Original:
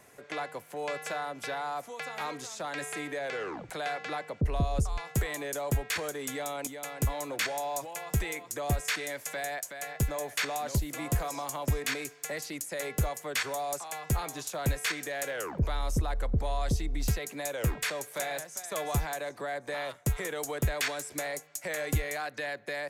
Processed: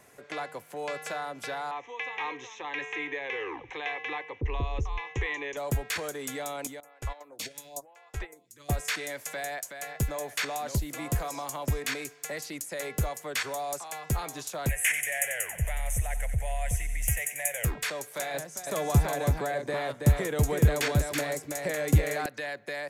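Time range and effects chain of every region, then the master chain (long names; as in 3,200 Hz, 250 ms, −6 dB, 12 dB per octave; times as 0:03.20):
0:01.71–0:05.57: Chebyshev low-pass filter 6,200 Hz, order 5 + parametric band 2,300 Hz +8 dB 2.6 octaves + phaser with its sweep stopped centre 950 Hz, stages 8
0:06.80–0:08.69: noise gate −34 dBFS, range −14 dB + phaser with staggered stages 1 Hz
0:14.69–0:17.65: drawn EQ curve 110 Hz 0 dB, 290 Hz −23 dB, 660 Hz +1 dB, 1,200 Hz −15 dB, 1,900 Hz +9 dB, 3,000 Hz +4 dB, 4,200 Hz −25 dB, 6,300 Hz +2 dB, 10,000 Hz +13 dB, 15,000 Hz +6 dB + feedback echo with a high-pass in the loop 92 ms, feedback 74%, high-pass 1,100 Hz, level −10 dB
0:18.34–0:22.26: high-pass filter 58 Hz + low-shelf EQ 450 Hz +10 dB + single-tap delay 327 ms −4.5 dB
whole clip: no processing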